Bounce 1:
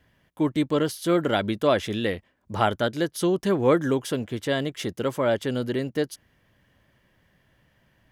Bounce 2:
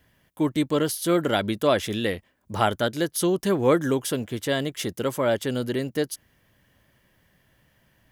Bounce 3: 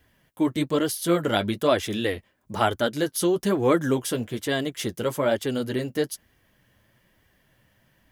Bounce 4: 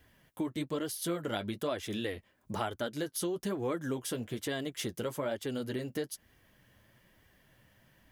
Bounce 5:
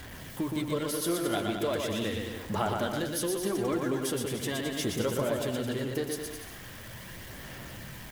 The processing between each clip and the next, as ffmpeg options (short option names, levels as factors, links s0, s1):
-af "highshelf=f=7300:g=11"
-af "flanger=delay=2.5:depth=7.4:regen=-36:speed=1.1:shape=sinusoidal,volume=1.5"
-af "acompressor=threshold=0.02:ratio=3,volume=0.891"
-af "aeval=exprs='val(0)+0.5*0.00708*sgn(val(0))':c=same,aphaser=in_gain=1:out_gain=1:delay=2.9:decay=0.29:speed=0.4:type=sinusoidal,aecho=1:1:120|216|292.8|354.2|403.4:0.631|0.398|0.251|0.158|0.1,volume=1.12"